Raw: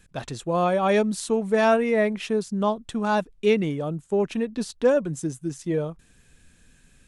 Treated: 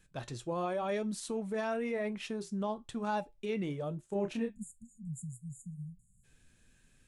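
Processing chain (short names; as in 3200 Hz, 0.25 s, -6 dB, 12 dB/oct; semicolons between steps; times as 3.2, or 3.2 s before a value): 4.48–6.24 spectral delete 230–6700 Hz; limiter -18 dBFS, peak gain reduction 7.5 dB; resonator 120 Hz, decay 0.2 s, harmonics odd, mix 50%; flange 0.96 Hz, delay 6.1 ms, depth 3.6 ms, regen -69%; 4.07–4.6 doubler 30 ms -4 dB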